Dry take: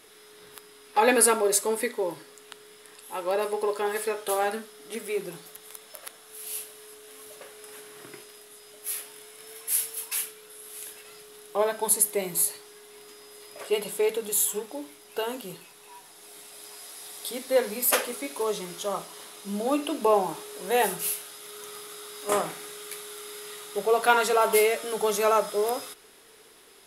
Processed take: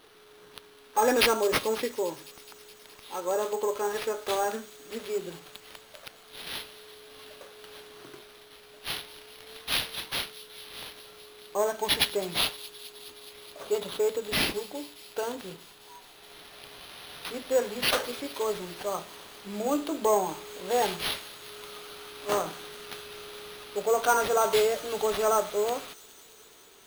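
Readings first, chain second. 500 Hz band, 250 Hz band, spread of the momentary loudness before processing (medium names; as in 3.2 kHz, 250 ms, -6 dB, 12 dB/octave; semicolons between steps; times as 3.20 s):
-2.0 dB, -1.5 dB, 22 LU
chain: high-order bell 3.2 kHz -9 dB; hum notches 50/100/150/200 Hz; in parallel at -9 dB: hard clipper -21 dBFS, distortion -10 dB; on the sum: sample-rate reducer 7.4 kHz, jitter 0%; feedback echo behind a high-pass 210 ms, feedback 80%, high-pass 3.9 kHz, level -15 dB; trim -4 dB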